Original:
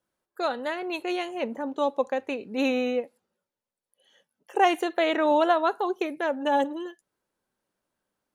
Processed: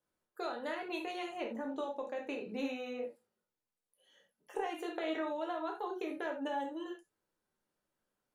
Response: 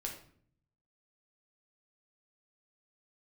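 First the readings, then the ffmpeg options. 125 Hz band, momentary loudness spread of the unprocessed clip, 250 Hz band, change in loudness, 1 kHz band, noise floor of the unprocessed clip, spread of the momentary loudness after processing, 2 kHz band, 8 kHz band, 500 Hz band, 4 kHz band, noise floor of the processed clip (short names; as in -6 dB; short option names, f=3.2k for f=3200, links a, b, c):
n/a, 10 LU, -11.0 dB, -13.0 dB, -14.5 dB, under -85 dBFS, 6 LU, -12.0 dB, -12.0 dB, -13.0 dB, -12.0 dB, under -85 dBFS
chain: -filter_complex "[0:a]acompressor=threshold=-29dB:ratio=12[a];[1:a]atrim=start_sample=2205,atrim=end_sample=3969,asetrate=39249,aresample=44100[b];[a][b]afir=irnorm=-1:irlink=0,volume=-4.5dB"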